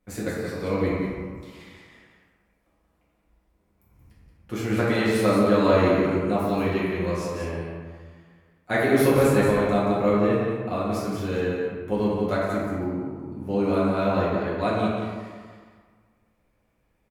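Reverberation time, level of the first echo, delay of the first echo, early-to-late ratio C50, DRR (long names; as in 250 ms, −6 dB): 1.7 s, −4.5 dB, 179 ms, −2.0 dB, −9.5 dB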